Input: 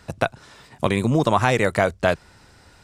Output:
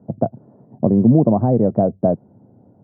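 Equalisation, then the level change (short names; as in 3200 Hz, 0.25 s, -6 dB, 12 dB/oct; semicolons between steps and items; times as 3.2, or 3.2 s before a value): elliptic band-pass 110–690 Hz, stop band 60 dB; low shelf 150 Hz +3.5 dB; bell 220 Hz +9 dB 0.86 oct; +2.0 dB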